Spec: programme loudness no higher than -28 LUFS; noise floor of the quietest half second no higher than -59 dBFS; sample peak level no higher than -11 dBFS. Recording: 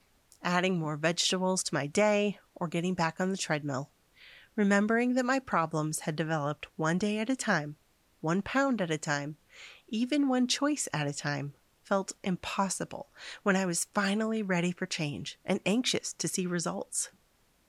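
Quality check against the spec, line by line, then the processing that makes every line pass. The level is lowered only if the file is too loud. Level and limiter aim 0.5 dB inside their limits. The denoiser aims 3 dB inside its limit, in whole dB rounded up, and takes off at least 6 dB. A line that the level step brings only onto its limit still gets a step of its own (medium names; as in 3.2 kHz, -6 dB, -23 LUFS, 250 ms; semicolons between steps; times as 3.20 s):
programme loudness -30.5 LUFS: pass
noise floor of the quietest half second -68 dBFS: pass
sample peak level -14.0 dBFS: pass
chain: none needed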